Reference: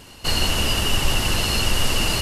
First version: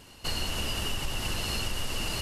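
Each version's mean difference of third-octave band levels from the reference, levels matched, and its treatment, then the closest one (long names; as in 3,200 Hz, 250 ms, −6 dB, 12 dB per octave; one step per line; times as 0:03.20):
1.0 dB: downward compressor, threshold −19 dBFS, peak gain reduction 7 dB
level −7.5 dB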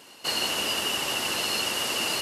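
3.0 dB: high-pass filter 310 Hz 12 dB per octave
level −4 dB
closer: first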